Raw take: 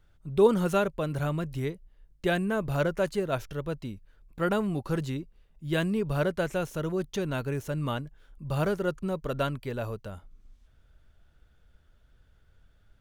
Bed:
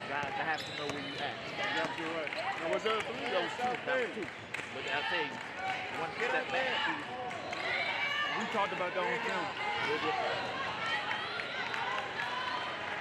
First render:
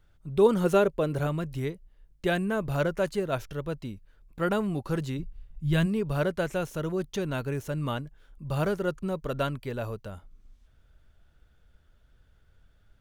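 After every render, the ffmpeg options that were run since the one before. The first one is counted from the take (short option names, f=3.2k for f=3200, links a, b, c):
-filter_complex "[0:a]asettb=1/sr,asplit=3[a][b][c];[a]atrim=end=0.644[d];[b]atrim=start=0.64:end=1.27,asetpts=PTS-STARTPTS,afade=t=in:d=0.004:c=qsin,afade=t=out:st=0.626:d=0.004:c=qsin,equalizer=f=420:w=1.4:g=7[e];[c]atrim=start=1.266[f];[d][e]acrossfade=d=0.004:c1=hsin:c2=qsin[g];[g][f]acrossfade=d=0.004:c1=qsin:c2=hsin,asplit=3[h][i][j];[h]afade=t=out:st=5.18:d=0.02[k];[i]asubboost=boost=6:cutoff=140,afade=t=in:st=5.18:d=0.02,afade=t=out:st=5.85:d=0.02[l];[j]afade=t=in:st=5.85:d=0.02[m];[k][l][m]amix=inputs=3:normalize=0"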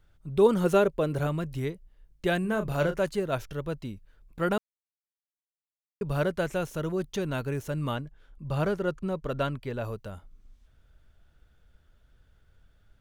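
-filter_complex "[0:a]asettb=1/sr,asplit=3[a][b][c];[a]atrim=end=2.414[d];[b]atrim=start=2.41:end=3.01,asetpts=PTS-STARTPTS,afade=t=in:d=0.004:c=qsin,afade=t=out:st=0.596:d=0.004:c=qsin,asplit=2[e][f];[f]adelay=33,volume=-8.5dB[g];[e][g]amix=inputs=2:normalize=0,atrim=end_sample=26460[h];[c]atrim=start=3.006[i];[d][h]acrossfade=d=0.004:c1=hsin:c2=qsin[j];[j][i]acrossfade=d=0.004:c1=qsin:c2=hsin,asettb=1/sr,asplit=3[k][l][m];[k]atrim=end=7.964[n];[l]atrim=start=7.96:end=9.85,asetpts=PTS-STARTPTS,afade=t=in:d=0.004:c=qsin,afade=t=out:st=1.886:d=0.004:c=qsin,highshelf=f=7.2k:g=-9[o];[m]atrim=start=9.846[p];[n][o]acrossfade=d=0.004:c1=hsin:c2=qsin[q];[q][p]acrossfade=d=0.004:c1=qsin:c2=hsin,asplit=3[r][s][t];[r]atrim=end=4.58,asetpts=PTS-STARTPTS,afade=t=out:st=4.576:d=0.004:c=hsin[u];[s]atrim=start=4.58:end=6.01,asetpts=PTS-STARTPTS,volume=0[v];[t]atrim=start=6.01,asetpts=PTS-STARTPTS,afade=t=in:d=0.004:c=hsin[w];[u][v][w]concat=n=3:v=0:a=1"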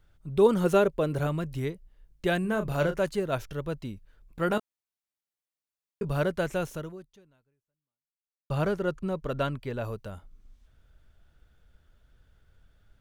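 -filter_complex "[0:a]asettb=1/sr,asplit=3[a][b][c];[a]atrim=end=4.484[d];[b]atrim=start=4.48:end=6.09,asetpts=PTS-STARTPTS,afade=t=in:d=0.004:c=qsin,afade=t=out:st=1.606:d=0.004:c=qsin,asplit=2[e][f];[f]adelay=18,volume=-9dB[g];[e][g]amix=inputs=2:normalize=0,atrim=end_sample=71001[h];[c]atrim=start=6.086[i];[d][h]acrossfade=d=0.004:c1=hsin:c2=qsin[j];[j][i]acrossfade=d=0.004:c1=qsin:c2=hsin,asplit=2[k][l];[k]atrim=end=8.5,asetpts=PTS-STARTPTS,afade=t=out:st=6.72:d=1.78:c=exp[m];[l]atrim=start=8.5,asetpts=PTS-STARTPTS,afade=t=in:d=0.004:c=hsin[n];[m][n]concat=n=2:v=0:a=1"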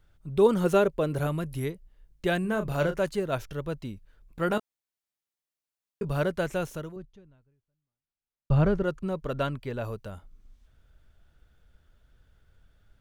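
-filter_complex "[0:a]asettb=1/sr,asplit=3[a][b][c];[a]atrim=end=1.174[d];[b]atrim=start=1.17:end=1.72,asetpts=PTS-STARTPTS,afade=t=in:d=0.004:c=qsin,afade=t=out:st=0.546:d=0.004:c=qsin,equalizer=f=11k:w=4.9:g=15[e];[c]atrim=start=1.716[f];[d][e]acrossfade=d=0.004:c1=hsin:c2=qsin[g];[g][f]acrossfade=d=0.004:c1=qsin:c2=hsin,asettb=1/sr,asplit=3[h][i][j];[h]atrim=end=6.964[k];[i]atrim=start=6.96:end=8.83,asetpts=PTS-STARTPTS,afade=t=in:d=0.004:c=qsin,afade=t=out:st=1.866:d=0.004:c=qsin,aemphasis=mode=reproduction:type=bsi[l];[j]atrim=start=8.826[m];[k][l]acrossfade=d=0.004:c1=hsin:c2=qsin[n];[n][m]acrossfade=d=0.004:c1=qsin:c2=hsin"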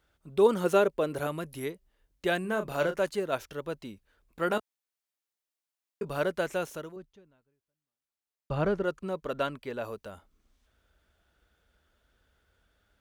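-af "highpass=71,equalizer=f=120:t=o:w=1.3:g=-13"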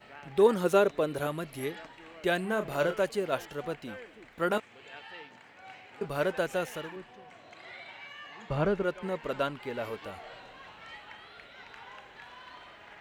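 -filter_complex "[1:a]volume=-13dB[a];[0:a][a]amix=inputs=2:normalize=0"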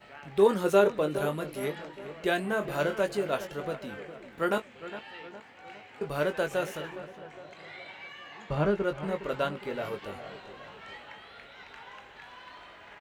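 -filter_complex "[0:a]asplit=2[a][b];[b]adelay=20,volume=-8dB[c];[a][c]amix=inputs=2:normalize=0,asplit=2[d][e];[e]adelay=411,lowpass=f=2.1k:p=1,volume=-13dB,asplit=2[f][g];[g]adelay=411,lowpass=f=2.1k:p=1,volume=0.53,asplit=2[h][i];[i]adelay=411,lowpass=f=2.1k:p=1,volume=0.53,asplit=2[j][k];[k]adelay=411,lowpass=f=2.1k:p=1,volume=0.53,asplit=2[l][m];[m]adelay=411,lowpass=f=2.1k:p=1,volume=0.53[n];[d][f][h][j][l][n]amix=inputs=6:normalize=0"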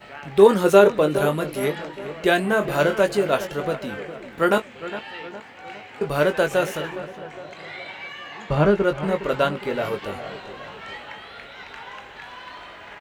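-af "volume=9dB,alimiter=limit=-2dB:level=0:latency=1"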